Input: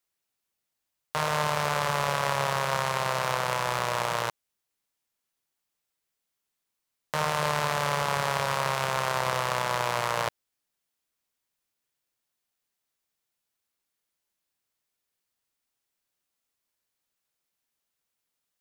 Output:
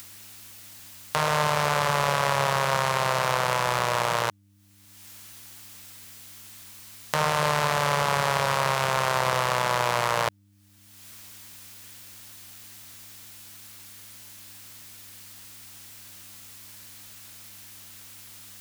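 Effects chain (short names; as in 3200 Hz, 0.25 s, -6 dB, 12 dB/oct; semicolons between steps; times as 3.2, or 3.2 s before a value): in parallel at +0.5 dB: limiter -19.5 dBFS, peak gain reduction 10 dB; on the sum: upward compressor, threshold -36 dBFS; buzz 100 Hz, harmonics 3, -60 dBFS -6 dB/oct; mismatched tape noise reduction encoder only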